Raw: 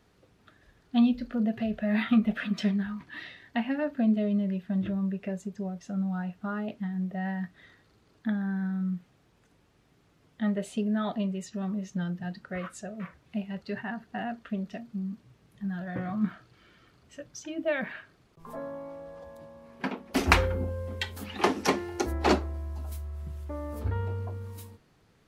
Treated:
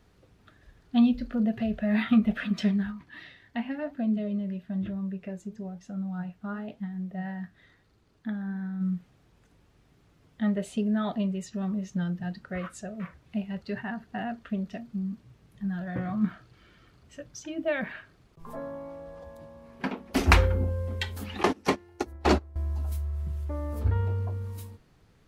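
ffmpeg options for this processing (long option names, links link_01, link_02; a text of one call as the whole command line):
ffmpeg -i in.wav -filter_complex "[0:a]asplit=3[link_01][link_02][link_03];[link_01]afade=type=out:start_time=2.9:duration=0.02[link_04];[link_02]flanger=delay=2.6:depth=7.4:regen=82:speed=1:shape=triangular,afade=type=in:start_time=2.9:duration=0.02,afade=type=out:start_time=8.8:duration=0.02[link_05];[link_03]afade=type=in:start_time=8.8:duration=0.02[link_06];[link_04][link_05][link_06]amix=inputs=3:normalize=0,asettb=1/sr,asplit=3[link_07][link_08][link_09];[link_07]atrim=end=21.434[link_10];[link_08]atrim=start=21.43:end=22.56,asetpts=PTS-STARTPTS,afade=type=in:duration=0.004:curve=qsin,afade=type=out:start_time=1.126:duration=0.004:curve=qsin,agate=range=-18dB:threshold=-28dB:ratio=16:release=100:detection=peak[link_11];[link_09]atrim=start=22.556[link_12];[link_10][link_11]acrossfade=duration=0.004:curve1=hsin:curve2=qsin[link_13];[link_13][link_12]acrossfade=duration=0.004:curve1=qsin:curve2=hsin,lowshelf=frequency=91:gain=10" out.wav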